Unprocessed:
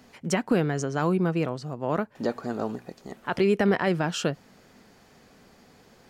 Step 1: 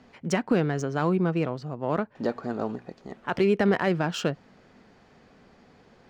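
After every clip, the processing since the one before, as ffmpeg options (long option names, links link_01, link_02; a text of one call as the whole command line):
ffmpeg -i in.wav -af "adynamicsmooth=sensitivity=4:basefreq=4400" out.wav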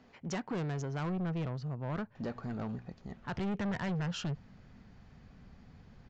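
ffmpeg -i in.wav -af "asubboost=boost=8.5:cutoff=140,aresample=16000,asoftclip=type=tanh:threshold=-25.5dB,aresample=44100,volume=-6dB" out.wav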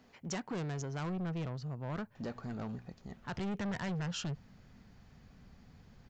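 ffmpeg -i in.wav -af "highshelf=frequency=6300:gain=12,volume=-2.5dB" out.wav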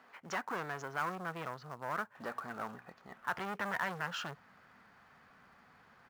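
ffmpeg -i in.wav -filter_complex "[0:a]bandpass=frequency=1300:width_type=q:width=1.7:csg=0,asplit=2[link_01][link_02];[link_02]acrusher=bits=2:mode=log:mix=0:aa=0.000001,volume=-7dB[link_03];[link_01][link_03]amix=inputs=2:normalize=0,volume=8dB" out.wav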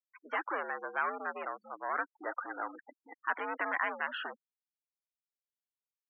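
ffmpeg -i in.wav -af "afftfilt=real='re*gte(hypot(re,im),0.01)':imag='im*gte(hypot(re,im),0.01)':win_size=1024:overlap=0.75,highpass=frequency=230:width_type=q:width=0.5412,highpass=frequency=230:width_type=q:width=1.307,lowpass=frequency=2900:width_type=q:width=0.5176,lowpass=frequency=2900:width_type=q:width=0.7071,lowpass=frequency=2900:width_type=q:width=1.932,afreqshift=75,volume=3.5dB" out.wav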